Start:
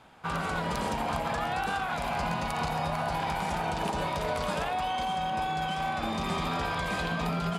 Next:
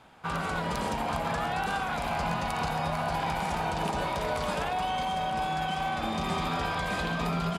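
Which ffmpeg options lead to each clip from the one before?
ffmpeg -i in.wav -af "aecho=1:1:951:0.316" out.wav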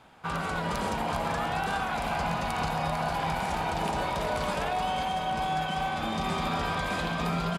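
ffmpeg -i in.wav -af "aecho=1:1:391:0.376" out.wav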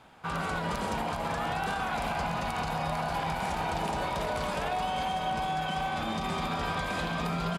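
ffmpeg -i in.wav -af "alimiter=limit=-22dB:level=0:latency=1:release=74" out.wav

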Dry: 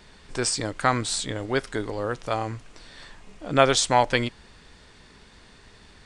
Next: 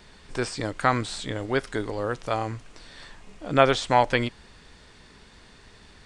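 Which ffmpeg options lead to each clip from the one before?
ffmpeg -i in.wav -filter_complex "[0:a]acrossover=split=3500[link_01][link_02];[link_02]acompressor=threshold=-38dB:ratio=4:attack=1:release=60[link_03];[link_01][link_03]amix=inputs=2:normalize=0" out.wav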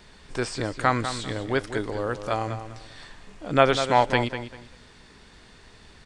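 ffmpeg -i in.wav -filter_complex "[0:a]asplit=2[link_01][link_02];[link_02]adelay=197,lowpass=frequency=4500:poles=1,volume=-9.5dB,asplit=2[link_03][link_04];[link_04]adelay=197,lowpass=frequency=4500:poles=1,volume=0.25,asplit=2[link_05][link_06];[link_06]adelay=197,lowpass=frequency=4500:poles=1,volume=0.25[link_07];[link_01][link_03][link_05][link_07]amix=inputs=4:normalize=0" out.wav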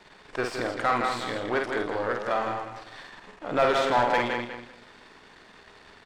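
ffmpeg -i in.wav -filter_complex "[0:a]aeval=exprs='if(lt(val(0),0),0.251*val(0),val(0))':channel_layout=same,aecho=1:1:49.56|163.3:0.501|0.355,asplit=2[link_01][link_02];[link_02]highpass=frequency=720:poles=1,volume=23dB,asoftclip=type=tanh:threshold=-1.5dB[link_03];[link_01][link_03]amix=inputs=2:normalize=0,lowpass=frequency=1400:poles=1,volume=-6dB,volume=-8dB" out.wav

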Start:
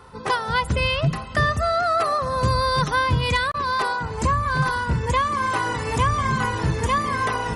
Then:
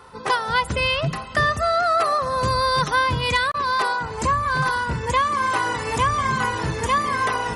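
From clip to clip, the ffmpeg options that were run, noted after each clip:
ffmpeg -i in.wav -af "lowshelf=frequency=240:gain=-8,volume=2dB" out.wav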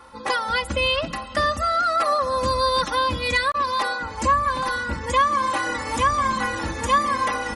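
ffmpeg -i in.wav -af "aecho=1:1:3.6:0.92,volume=-3dB" out.wav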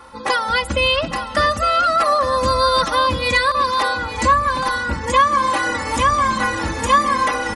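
ffmpeg -i in.wav -af "aecho=1:1:858:0.266,volume=4.5dB" out.wav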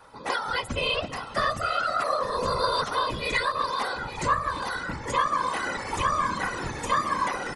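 ffmpeg -i in.wav -af "afftfilt=real='hypot(re,im)*cos(2*PI*random(0))':imag='hypot(re,im)*sin(2*PI*random(1))':win_size=512:overlap=0.75,volume=-3.5dB" out.wav

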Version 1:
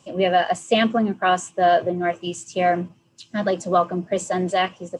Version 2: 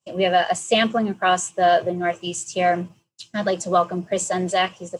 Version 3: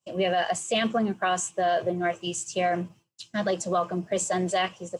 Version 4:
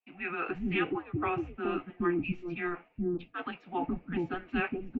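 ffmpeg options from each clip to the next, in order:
ffmpeg -i in.wav -af "equalizer=frequency=270:width=4:gain=-8,agate=range=-33dB:threshold=-43dB:ratio=3:detection=peak,highshelf=frequency=4600:gain=9" out.wav
ffmpeg -i in.wav -af "alimiter=limit=-13dB:level=0:latency=1:release=33,volume=-3dB" out.wav
ffmpeg -i in.wav -filter_complex "[0:a]acrossover=split=780[link_01][link_02];[link_01]adelay=420[link_03];[link_03][link_02]amix=inputs=2:normalize=0,flanger=delay=1.4:depth=2.6:regen=-66:speed=0.95:shape=sinusoidal,highpass=frequency=490:width_type=q:width=0.5412,highpass=frequency=490:width_type=q:width=1.307,lowpass=frequency=3100:width_type=q:width=0.5176,lowpass=frequency=3100:width_type=q:width=0.7071,lowpass=frequency=3100:width_type=q:width=1.932,afreqshift=-350,volume=2dB" out.wav

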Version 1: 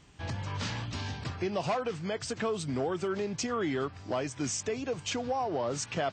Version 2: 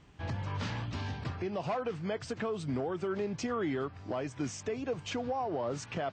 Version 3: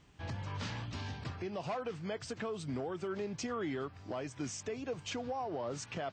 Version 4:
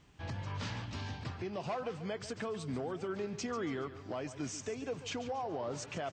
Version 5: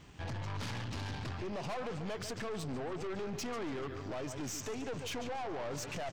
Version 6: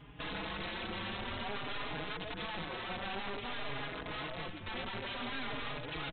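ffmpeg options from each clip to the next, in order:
ffmpeg -i in.wav -af "lowpass=frequency=2300:poles=1,alimiter=level_in=1dB:limit=-24dB:level=0:latency=1:release=254,volume=-1dB" out.wav
ffmpeg -i in.wav -af "highshelf=frequency=3600:gain=6.5,volume=-4.5dB" out.wav
ffmpeg -i in.wav -af "aecho=1:1:141|282|423|564:0.224|0.0895|0.0358|0.0143" out.wav
ffmpeg -i in.wav -filter_complex "[0:a]asplit=2[link_01][link_02];[link_02]alimiter=level_in=15.5dB:limit=-24dB:level=0:latency=1:release=66,volume=-15.5dB,volume=2dB[link_03];[link_01][link_03]amix=inputs=2:normalize=0,aeval=exprs='(tanh(89.1*val(0)+0.5)-tanh(0.5))/89.1':channel_layout=same,volume=2.5dB" out.wav
ffmpeg -i in.wav -filter_complex "[0:a]aresample=8000,aeval=exprs='(mod(63.1*val(0)+1,2)-1)/63.1':channel_layout=same,aresample=44100,asplit=2[link_01][link_02];[link_02]adelay=4.4,afreqshift=0.53[link_03];[link_01][link_03]amix=inputs=2:normalize=1,volume=4.5dB" out.wav

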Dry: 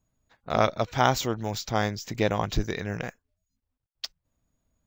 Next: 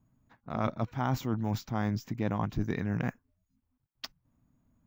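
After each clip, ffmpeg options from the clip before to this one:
ffmpeg -i in.wav -af "equalizer=frequency=125:width_type=o:width=1:gain=8,equalizer=frequency=250:width_type=o:width=1:gain=10,equalizer=frequency=500:width_type=o:width=1:gain=-4,equalizer=frequency=1000:width_type=o:width=1:gain=5,equalizer=frequency=4000:width_type=o:width=1:gain=-6,equalizer=frequency=8000:width_type=o:width=1:gain=-8,areverse,acompressor=threshold=-28dB:ratio=5,areverse" out.wav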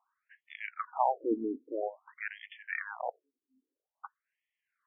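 ffmpeg -i in.wav -af "afftfilt=real='re*between(b*sr/1024,310*pow(2500/310,0.5+0.5*sin(2*PI*0.5*pts/sr))/1.41,310*pow(2500/310,0.5+0.5*sin(2*PI*0.5*pts/sr))*1.41)':imag='im*between(b*sr/1024,310*pow(2500/310,0.5+0.5*sin(2*PI*0.5*pts/sr))/1.41,310*pow(2500/310,0.5+0.5*sin(2*PI*0.5*pts/sr))*1.41)':win_size=1024:overlap=0.75,volume=8dB" out.wav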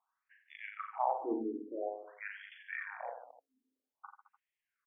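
ffmpeg -i in.wav -af "aecho=1:1:40|88|145.6|214.7|297.7:0.631|0.398|0.251|0.158|0.1,volume=-6.5dB" out.wav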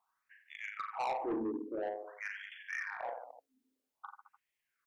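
ffmpeg -i in.wav -af "asoftclip=type=tanh:threshold=-34.5dB,volume=4dB" out.wav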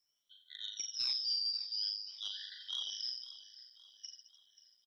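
ffmpeg -i in.wav -af "afftfilt=real='real(if(lt(b,272),68*(eq(floor(b/68),0)*3+eq(floor(b/68),1)*2+eq(floor(b/68),2)*1+eq(floor(b/68),3)*0)+mod(b,68),b),0)':imag='imag(if(lt(b,272),68*(eq(floor(b/68),0)*3+eq(floor(b/68),1)*2+eq(floor(b/68),2)*1+eq(floor(b/68),3)*0)+mod(b,68),b),0)':win_size=2048:overlap=0.75,aecho=1:1:534|1068|1602|2136:0.158|0.0777|0.0381|0.0186" out.wav

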